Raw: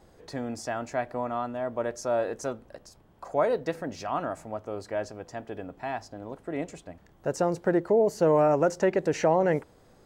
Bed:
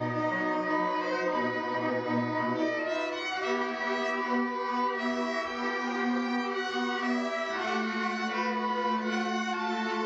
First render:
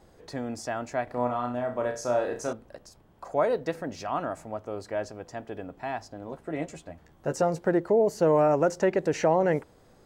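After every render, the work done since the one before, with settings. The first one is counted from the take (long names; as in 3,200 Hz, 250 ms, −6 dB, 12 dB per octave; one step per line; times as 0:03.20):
0:01.04–0:02.53: flutter between parallel walls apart 5.6 metres, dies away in 0.35 s
0:06.26–0:07.59: double-tracking delay 13 ms −7 dB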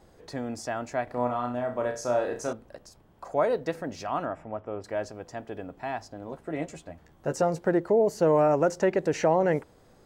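0:04.26–0:04.84: Savitzky-Golay smoothing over 25 samples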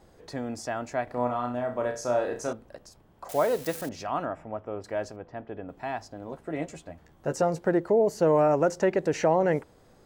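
0:03.29–0:03.89: spike at every zero crossing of −29 dBFS
0:05.16–0:05.69: high-frequency loss of the air 340 metres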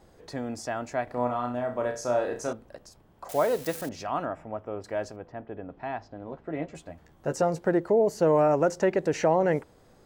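0:05.32–0:06.75: high-frequency loss of the air 210 metres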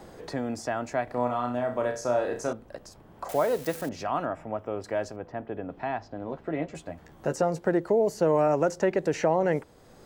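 multiband upward and downward compressor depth 40%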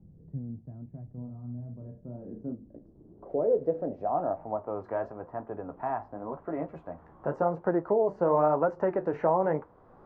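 flanger 0.92 Hz, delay 9.4 ms, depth 8.8 ms, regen −56%
low-pass filter sweep 150 Hz → 1,100 Hz, 0:01.78–0:04.87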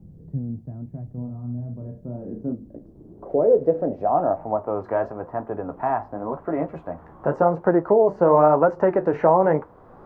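level +8.5 dB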